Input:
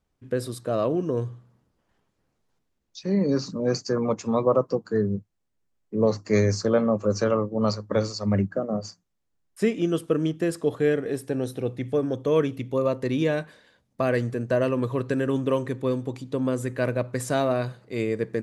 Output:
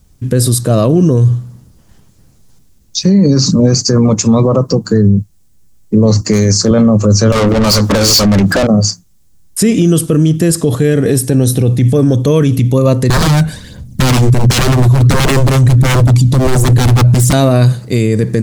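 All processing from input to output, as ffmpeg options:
-filter_complex "[0:a]asettb=1/sr,asplit=3[a][b][c];[a]atrim=end=6.214[d];[b]atrim=start=6.21:end=6.71,asetpts=PTS-STARTPTS,afade=t=in:d=0.004:c=qsin,afade=t=out:st=0.496:d=0.004:c=qsin,highpass=160,asoftclip=type=hard:threshold=-15dB[e];[c]atrim=start=6.706[f];[d][e]acrossfade=d=0.004:c1=hsin:c2=qsin[g];[g][f]acrossfade=d=0.004:c1=qsin:c2=hsin,asettb=1/sr,asplit=3[h][i][j];[h]atrim=end=7.324[k];[i]atrim=start=7.32:end=8.67,asetpts=PTS-STARTPTS,afade=t=in:d=0.004:c=qsin,afade=t=out:st=1.346:d=0.004:c=qsin,highpass=f=160:p=1,acompressor=threshold=-33dB:ratio=6:attack=3.2:release=140:knee=1:detection=peak,asplit=2[l][m];[m]highpass=f=720:p=1,volume=32dB,asoftclip=type=tanh:threshold=-21.5dB[n];[l][n]amix=inputs=2:normalize=0,lowpass=f=3k:p=1,volume=-6dB[o];[j]atrim=start=8.666[p];[k][o]acrossfade=d=0.004:c1=hsin:c2=qsin[q];[q][p]acrossfade=d=0.004:c1=qsin:c2=hsin,asettb=1/sr,asplit=3[r][s][t];[r]atrim=end=13.104[u];[s]atrim=start=13.1:end=17.33,asetpts=PTS-STARTPTS,afade=t=in:d=0.004:c=qsin,afade=t=out:st=4.226:d=0.004:c=qsin,lowshelf=f=240:g=10.5,aphaser=in_gain=1:out_gain=1:delay=1.4:decay=0.51:speed=1.4:type=sinusoidal,aeval=exprs='0.0841*(abs(mod(val(0)/0.0841+3,4)-2)-1)':c=same[v];[t]atrim=start=17.326[w];[u][v]acrossfade=d=0.004:c1=hsin:c2=qsin[x];[x][w]acrossfade=d=0.004:c1=qsin:c2=hsin,bass=f=250:g=14,treble=f=4k:g=15,alimiter=level_in=17dB:limit=-1dB:release=50:level=0:latency=1,volume=-1dB"

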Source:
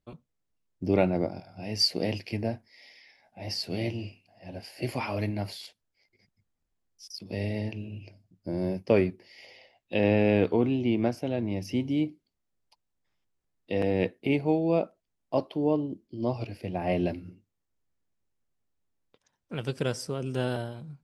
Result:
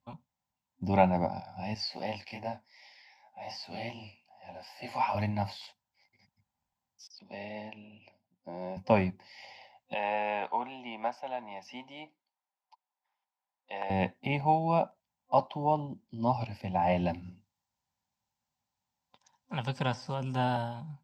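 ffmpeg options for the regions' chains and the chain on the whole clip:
-filter_complex "[0:a]asettb=1/sr,asplit=3[a][b][c];[a]atrim=end=1.744[d];[b]atrim=start=1.74:end=5.15,asetpts=PTS-STARTPTS,afade=t=in:d=0.004:c=qsin,afade=t=out:st=3.406:d=0.004:c=qsin,bass=f=250:g=-11,treble=f=4k:g=0,flanger=delay=18.5:depth=7.1:speed=2.6[e];[c]atrim=start=5.146[f];[d][e]acrossfade=d=0.004:c1=hsin:c2=qsin[g];[g][f]acrossfade=d=0.004:c1=qsin:c2=hsin,asettb=1/sr,asplit=3[h][i][j];[h]atrim=end=7.074[k];[i]atrim=start=7.07:end=8.77,asetpts=PTS-STARTPTS,afade=t=in:d=0.004:c=qsin,afade=t=out:st=1.696:d=0.004:c=qsin,highpass=370,lowpass=3.2k,equalizer=f=1.2k:w=0.83:g=-6.5[l];[j]atrim=start=8.766[m];[k][l]acrossfade=d=0.004:c1=hsin:c2=qsin[n];[n][m]acrossfade=d=0.004:c1=qsin:c2=hsin,asettb=1/sr,asplit=3[o][p][q];[o]atrim=end=9.944[r];[p]atrim=start=9.94:end=13.9,asetpts=PTS-STARTPTS,afade=t=in:d=0.004:c=qsin,afade=t=out:st=3.956:d=0.004:c=qsin,highpass=670,aemphasis=mode=reproduction:type=75kf[s];[q]atrim=start=13.896[t];[r][s]acrossfade=d=0.004:c1=hsin:c2=qsin[u];[u][t]acrossfade=d=0.004:c1=qsin:c2=hsin,asettb=1/sr,asplit=3[v][w][x];[v]atrim=end=17.224[y];[w]atrim=start=17.22:end=20.15,asetpts=PTS-STARTPTS,afade=t=in:d=0.004:c=qsin,afade=t=out:st=2.926:d=0.004:c=qsin,acrossover=split=3900[z][aa];[aa]acompressor=threshold=-51dB:ratio=4:attack=1:release=60[ab];[z][ab]amix=inputs=2:normalize=0,equalizer=f=5.1k:w=0.85:g=6[ac];[x]atrim=start=20.146[ad];[y][ac]acrossfade=d=0.004:c1=hsin:c2=qsin[ae];[ae][ad]acrossfade=d=0.004:c1=qsin:c2=hsin,highpass=73,acrossover=split=3800[af][ag];[ag]acompressor=threshold=-50dB:ratio=4:attack=1:release=60[ah];[af][ah]amix=inputs=2:normalize=0,superequalizer=6b=0.282:7b=0.282:9b=3.55:16b=0.316"

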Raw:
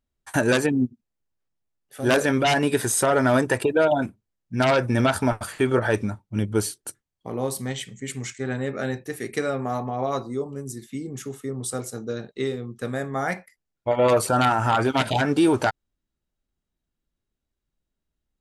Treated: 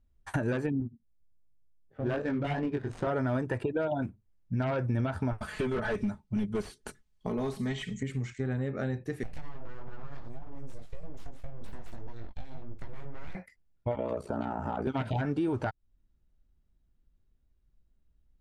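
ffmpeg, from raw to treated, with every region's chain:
-filter_complex "[0:a]asettb=1/sr,asplit=3[a][b][c];[a]atrim=end=0.804[d];[b]atrim=start=0.8:end=3.07,asetpts=PTS-STARTPTS,afade=t=in:d=0.004:c=qsin,afade=t=out:st=2.266:d=0.004:c=qsin,flanger=delay=17.5:depth=4.5:speed=2.7,adynamicsmooth=sensitivity=3:basefreq=930[e];[c]atrim=start=3.066[f];[d][e]acrossfade=d=0.004:c1=hsin:c2=qsin[g];[g][f]acrossfade=d=0.004:c1=qsin:c2=hsin,asettb=1/sr,asplit=3[h][i][j];[h]atrim=end=5.384[k];[i]atrim=start=5.38:end=8.03,asetpts=PTS-STARTPTS,afade=t=in:d=0.004:c=qsin,afade=t=out:st=2.646:d=0.004:c=qsin,highshelf=f=2.2k:g=10,aecho=1:1:4.7:0.73,atrim=end_sample=116865,volume=19dB,asoftclip=hard,volume=-19dB[l];[j]atrim=start=8.026[m];[k][l]acrossfade=d=0.004:c1=hsin:c2=qsin[n];[n][m]acrossfade=d=0.004:c1=qsin:c2=hsin,asettb=1/sr,asplit=3[o][p][q];[o]atrim=end=9.234[r];[p]atrim=start=9.23:end=13.35,asetpts=PTS-STARTPTS,afade=t=in:d=0.004:c=qsin,afade=t=out:st=4.116:d=0.004:c=qsin,acompressor=threshold=-34dB:ratio=6:attack=3.2:release=140:knee=1:detection=peak,flanger=delay=18:depth=2.9:speed=1.7,aeval=exprs='abs(val(0))':c=same[s];[q]atrim=start=13.346[t];[r][s]acrossfade=d=0.004:c1=hsin:c2=qsin[u];[u][t]acrossfade=d=0.004:c1=qsin:c2=hsin,asettb=1/sr,asplit=3[v][w][x];[v]atrim=end=13.954[y];[w]atrim=start=13.95:end=14.87,asetpts=PTS-STARTPTS,afade=t=in:d=0.004:c=qsin,afade=t=out:st=0.916:d=0.004:c=qsin,aecho=1:1:4.7:0.38,atrim=end_sample=40572,acrossover=split=210|900[z][aa][ab];[z]acompressor=threshold=-43dB:ratio=4[ac];[aa]acompressor=threshold=-20dB:ratio=4[ad];[ab]acompressor=threshold=-38dB:ratio=4[ae];[ac][ad][ae]amix=inputs=3:normalize=0,aeval=exprs='val(0)*sin(2*PI*30*n/s)':c=same[af];[x]atrim=start=14.866[ag];[y][af]acrossfade=d=0.004:c1=hsin:c2=qsin[ah];[ah][ag]acrossfade=d=0.004:c1=qsin:c2=hsin,acrossover=split=2800[ai][aj];[aj]acompressor=threshold=-36dB:ratio=4:attack=1:release=60[ak];[ai][ak]amix=inputs=2:normalize=0,aemphasis=mode=reproduction:type=bsi,acompressor=threshold=-32dB:ratio=3"

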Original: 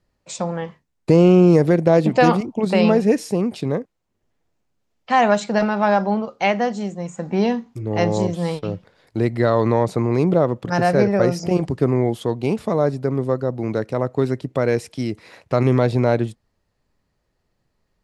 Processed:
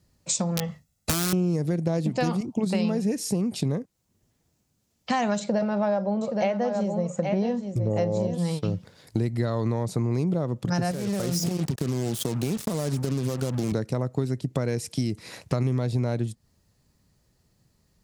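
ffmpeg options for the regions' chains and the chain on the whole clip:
-filter_complex "[0:a]asettb=1/sr,asplit=3[a][b][c];[a]atrim=end=0.574[d];[b]atrim=start=0.57:end=1.33,asetpts=PTS-STARTPTS,afade=t=in:d=0.004:c=qsin,afade=t=out:st=0.756:d=0.004:c=qsin,aecho=1:1:1.5:0.61,atrim=end_sample=33516,acompressor=threshold=-15dB:ratio=8:attack=3.2:release=140:knee=1:detection=peak,aeval=exprs='(mod(5.62*val(0)+1,2)-1)/5.62':c=same[e];[c]atrim=start=1.326[f];[d][e]acrossfade=d=0.004:c1=hsin:c2=qsin[g];[g][f]acrossfade=d=0.004:c1=qsin:c2=hsin,asettb=1/sr,asplit=3[h][i][j];[h]atrim=end=5.394[k];[i]atrim=start=5.39:end=8.38,asetpts=PTS-STARTPTS,afade=t=in:d=0.004:c=qsin,afade=t=out:st=2.986:d=0.004:c=qsin,lowpass=f=2.8k:p=1,equalizer=f=560:w=3.4:g=14,aecho=1:1:821:0.316,atrim=end_sample=131859[l];[j]atrim=start=8.376[m];[k][l]acrossfade=d=0.004:c1=hsin:c2=qsin[n];[n][m]acrossfade=d=0.004:c1=qsin:c2=hsin,asettb=1/sr,asplit=3[o][p][q];[o]atrim=end=10.914[r];[p]atrim=start=10.91:end=13.72,asetpts=PTS-STARTPTS,afade=t=in:d=0.004:c=qsin,afade=t=out:st=2.806:d=0.004:c=qsin,highpass=110,acompressor=threshold=-23dB:ratio=16:attack=3.2:release=140:knee=1:detection=peak,acrusher=bits=5:mix=0:aa=0.5[s];[q]atrim=start=13.716[t];[r][s]acrossfade=d=0.004:c1=hsin:c2=qsin[u];[u][t]acrossfade=d=0.004:c1=qsin:c2=hsin,highpass=f=120:p=1,bass=f=250:g=13,treble=f=4k:g=13,acompressor=threshold=-23dB:ratio=6"

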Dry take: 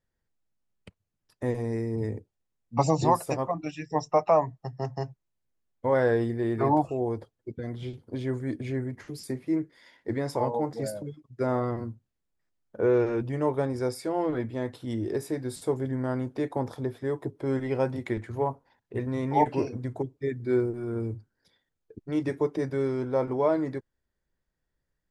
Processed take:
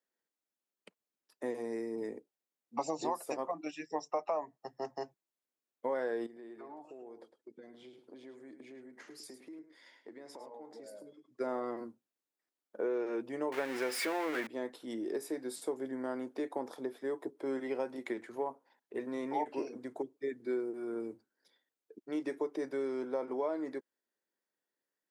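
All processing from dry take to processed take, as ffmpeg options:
-filter_complex "[0:a]asettb=1/sr,asplit=3[a][b][c];[a]atrim=end=6.264[d];[b]atrim=start=6.26:end=11.4,asetpts=PTS-STARTPTS,afade=t=in:d=0.004:c=qsin,afade=t=out:st=5.136:d=0.004:c=qsin,lowpass=9.7k,acompressor=threshold=-41dB:ratio=8:attack=3.2:release=140:knee=1:detection=peak,aecho=1:1:106:0.282,atrim=end_sample=226674[e];[c]atrim=start=11.396[f];[d][e]acrossfade=d=0.004:c1=hsin:c2=qsin[g];[g][f]acrossfade=d=0.004:c1=qsin:c2=hsin,asettb=1/sr,asplit=3[h][i][j];[h]atrim=end=13.524[k];[i]atrim=start=13.52:end=14.47,asetpts=PTS-STARTPTS,afade=t=in:d=0.004:c=qsin,afade=t=out:st=0.946:d=0.004:c=qsin,aeval=exprs='val(0)+0.5*0.0237*sgn(val(0))':c=same,equalizer=f=2k:t=o:w=1.5:g=14[l];[j]atrim=start=14.466[m];[k][l]acrossfade=d=0.004:c1=hsin:c2=qsin[n];[n][m]acrossfade=d=0.004:c1=qsin:c2=hsin,highpass=f=260:w=0.5412,highpass=f=260:w=1.3066,highshelf=f=9.6k:g=4,acompressor=threshold=-27dB:ratio=4,volume=-4.5dB"

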